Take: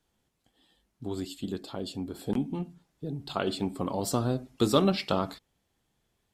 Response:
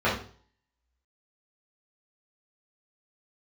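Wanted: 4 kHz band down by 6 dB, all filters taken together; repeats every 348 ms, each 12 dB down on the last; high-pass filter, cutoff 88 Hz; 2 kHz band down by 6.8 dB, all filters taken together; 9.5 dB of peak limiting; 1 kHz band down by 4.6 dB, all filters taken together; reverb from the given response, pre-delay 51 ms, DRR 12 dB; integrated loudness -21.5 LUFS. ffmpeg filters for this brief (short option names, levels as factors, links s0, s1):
-filter_complex "[0:a]highpass=88,equalizer=f=1000:t=o:g=-4,equalizer=f=2000:t=o:g=-7,equalizer=f=4000:t=o:g=-5,alimiter=limit=0.106:level=0:latency=1,aecho=1:1:348|696|1044:0.251|0.0628|0.0157,asplit=2[s0][s1];[1:a]atrim=start_sample=2205,adelay=51[s2];[s1][s2]afir=irnorm=-1:irlink=0,volume=0.0398[s3];[s0][s3]amix=inputs=2:normalize=0,volume=4.22"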